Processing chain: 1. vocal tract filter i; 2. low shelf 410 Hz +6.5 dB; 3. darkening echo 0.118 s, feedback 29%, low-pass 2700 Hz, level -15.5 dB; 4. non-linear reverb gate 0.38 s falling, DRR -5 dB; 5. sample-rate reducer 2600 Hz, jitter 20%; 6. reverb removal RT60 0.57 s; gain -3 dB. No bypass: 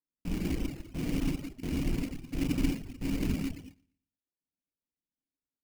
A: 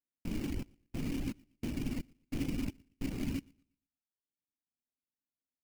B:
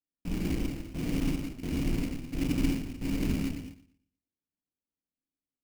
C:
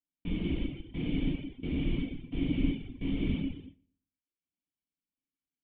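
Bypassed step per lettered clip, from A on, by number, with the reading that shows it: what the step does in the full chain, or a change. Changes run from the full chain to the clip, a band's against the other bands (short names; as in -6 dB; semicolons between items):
4, crest factor change -2.5 dB; 6, loudness change +1.5 LU; 5, distortion -9 dB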